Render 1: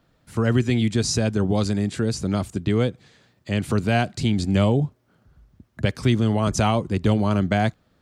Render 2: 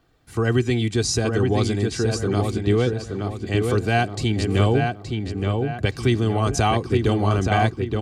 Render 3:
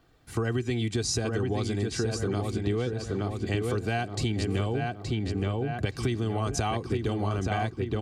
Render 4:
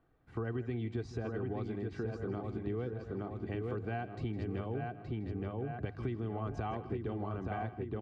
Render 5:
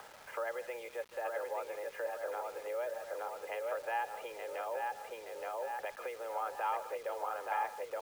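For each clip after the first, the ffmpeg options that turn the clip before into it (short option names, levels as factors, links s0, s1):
-filter_complex "[0:a]aecho=1:1:2.6:0.52,asplit=2[s0][s1];[s1]adelay=872,lowpass=f=3200:p=1,volume=0.631,asplit=2[s2][s3];[s3]adelay=872,lowpass=f=3200:p=1,volume=0.42,asplit=2[s4][s5];[s5]adelay=872,lowpass=f=3200:p=1,volume=0.42,asplit=2[s6][s7];[s7]adelay=872,lowpass=f=3200:p=1,volume=0.42,asplit=2[s8][s9];[s9]adelay=872,lowpass=f=3200:p=1,volume=0.42[s10];[s0][s2][s4][s6][s8][s10]amix=inputs=6:normalize=0"
-af "acompressor=threshold=0.0562:ratio=6"
-af "lowpass=1700,bandreject=f=50:t=h:w=6,bandreject=f=100:t=h:w=6,aecho=1:1:160:0.178,volume=0.376"
-af "acompressor=mode=upward:threshold=0.0126:ratio=2.5,highpass=f=440:t=q:w=0.5412,highpass=f=440:t=q:w=1.307,lowpass=f=2900:t=q:w=0.5176,lowpass=f=2900:t=q:w=0.7071,lowpass=f=2900:t=q:w=1.932,afreqshift=120,acrusher=bits=9:mix=0:aa=0.000001,volume=1.88"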